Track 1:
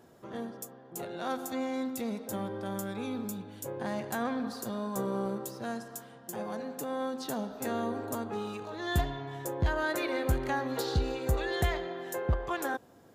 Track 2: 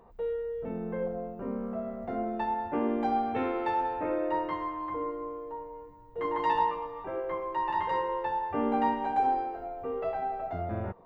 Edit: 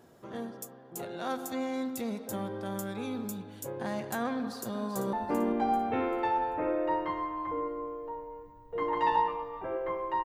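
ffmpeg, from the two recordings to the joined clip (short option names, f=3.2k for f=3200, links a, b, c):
-filter_complex "[0:a]apad=whole_dur=10.24,atrim=end=10.24,atrim=end=5.132[a];[1:a]atrim=start=2.558:end=7.67[b];[a][b]acrossfade=d=0.004:c1=hsin:c2=hsin,asplit=2[c][d];[d]afade=t=in:st=4.35:d=0.01,afade=t=out:st=5.13:d=0.01,aecho=0:1:390|780|1170|1560:0.354813|0.124185|0.0434646|0.0152126[e];[c][e]amix=inputs=2:normalize=0"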